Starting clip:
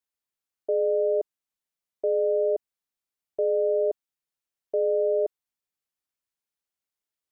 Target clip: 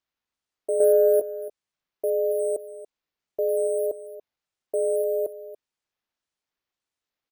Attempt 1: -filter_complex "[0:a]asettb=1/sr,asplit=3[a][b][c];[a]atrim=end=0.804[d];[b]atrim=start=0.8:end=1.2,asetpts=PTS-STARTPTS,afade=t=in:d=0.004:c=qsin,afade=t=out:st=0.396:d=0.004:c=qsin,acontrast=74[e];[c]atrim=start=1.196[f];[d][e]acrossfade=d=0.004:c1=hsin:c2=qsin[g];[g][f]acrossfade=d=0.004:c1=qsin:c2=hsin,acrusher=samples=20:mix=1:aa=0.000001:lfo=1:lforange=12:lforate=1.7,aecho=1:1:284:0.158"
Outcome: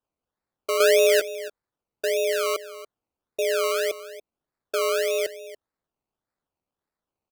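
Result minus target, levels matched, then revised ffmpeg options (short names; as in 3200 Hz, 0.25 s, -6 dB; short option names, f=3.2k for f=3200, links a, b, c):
decimation with a swept rate: distortion +17 dB
-filter_complex "[0:a]asettb=1/sr,asplit=3[a][b][c];[a]atrim=end=0.804[d];[b]atrim=start=0.8:end=1.2,asetpts=PTS-STARTPTS,afade=t=in:d=0.004:c=qsin,afade=t=out:st=0.396:d=0.004:c=qsin,acontrast=74[e];[c]atrim=start=1.196[f];[d][e]acrossfade=d=0.004:c1=hsin:c2=qsin[g];[g][f]acrossfade=d=0.004:c1=qsin:c2=hsin,acrusher=samples=4:mix=1:aa=0.000001:lfo=1:lforange=2.4:lforate=1.7,aecho=1:1:284:0.158"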